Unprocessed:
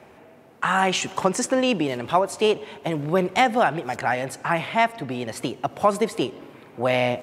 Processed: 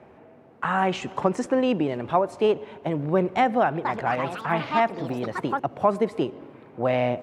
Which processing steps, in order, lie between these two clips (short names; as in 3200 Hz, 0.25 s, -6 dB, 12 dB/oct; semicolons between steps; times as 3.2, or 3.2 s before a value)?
LPF 1100 Hz 6 dB/oct; 3.6–5.93 echoes that change speed 0.249 s, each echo +5 st, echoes 2, each echo -6 dB